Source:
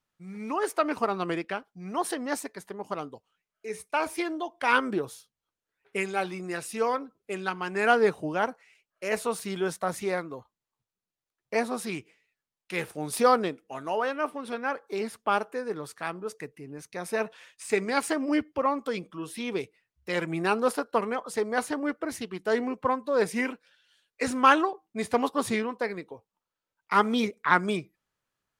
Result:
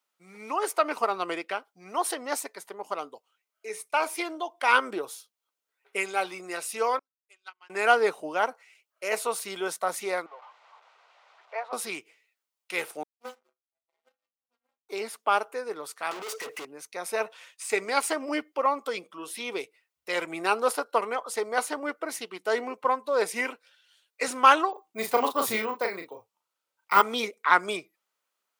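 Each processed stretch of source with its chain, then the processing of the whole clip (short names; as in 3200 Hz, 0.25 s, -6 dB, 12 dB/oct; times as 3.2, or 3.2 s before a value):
6.99–7.7 treble ducked by the level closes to 2700 Hz, closed at -27 dBFS + differentiator + upward expander 2.5:1, over -57 dBFS
10.26–11.73 zero-crossing step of -39.5 dBFS + HPF 650 Hz 24 dB/oct + tape spacing loss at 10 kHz 44 dB
13.03–14.89 median filter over 41 samples + metallic resonator 120 Hz, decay 0.62 s, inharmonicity 0.008 + power-law curve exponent 3
16.11–16.65 overdrive pedal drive 33 dB, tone 3600 Hz, clips at -23 dBFS + hard clip -35.5 dBFS
24.72–27.02 bell 110 Hz +14.5 dB 0.84 oct + doubler 36 ms -5 dB + careless resampling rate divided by 2×, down none, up hold
whole clip: HPF 490 Hz 12 dB/oct; high shelf 11000 Hz +5.5 dB; notch 1700 Hz, Q 10; gain +2.5 dB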